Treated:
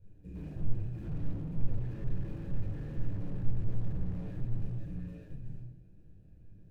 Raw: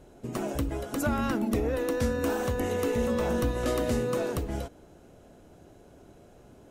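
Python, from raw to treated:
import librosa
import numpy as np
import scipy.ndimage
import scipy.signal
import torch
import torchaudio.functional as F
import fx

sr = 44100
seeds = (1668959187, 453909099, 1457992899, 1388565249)

p1 = scipy.signal.medfilt(x, 25)
p2 = fx.tone_stack(p1, sr, knobs='10-0-1')
p3 = fx.small_body(p2, sr, hz=(1700.0, 2500.0), ring_ms=35, db=17)
p4 = p3 * np.sin(2.0 * np.pi * 55.0 * np.arange(len(p3)) / sr)
p5 = p4 + fx.echo_single(p4, sr, ms=936, db=-8.0, dry=0)
p6 = fx.room_shoebox(p5, sr, seeds[0], volume_m3=730.0, walls='furnished', distance_m=4.7)
p7 = fx.slew_limit(p6, sr, full_power_hz=2.0)
y = p7 * librosa.db_to_amplitude(2.0)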